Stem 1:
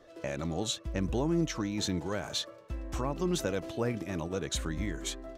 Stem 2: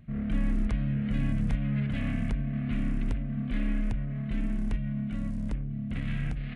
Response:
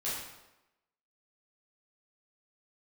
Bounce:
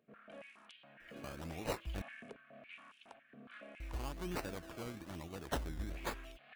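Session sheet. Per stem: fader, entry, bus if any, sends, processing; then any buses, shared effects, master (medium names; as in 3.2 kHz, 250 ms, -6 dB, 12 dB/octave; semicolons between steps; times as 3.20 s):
-2.5 dB, 1.00 s, muted 2.02–3.80 s, no send, ten-band graphic EQ 125 Hz -11 dB, 250 Hz -6 dB, 500 Hz -11 dB, 1 kHz -5 dB, 2 kHz -7 dB; decimation with a swept rate 19×, swing 60% 1.1 Hz
-13.5 dB, 0.00 s, no send, band-stop 2 kHz, Q 7.4; step-sequenced high-pass 7.2 Hz 440–3100 Hz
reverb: none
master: none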